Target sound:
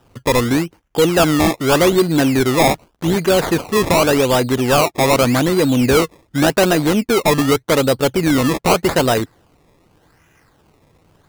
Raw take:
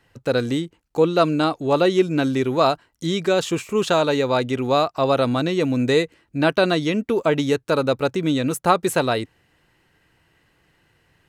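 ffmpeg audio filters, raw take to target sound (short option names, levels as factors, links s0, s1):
-filter_complex "[0:a]acrossover=split=4500[s0][s1];[s0]asoftclip=type=tanh:threshold=0.178[s2];[s2][s1]amix=inputs=2:normalize=0,acrusher=samples=20:mix=1:aa=0.000001:lfo=1:lforange=20:lforate=0.85,volume=2.37"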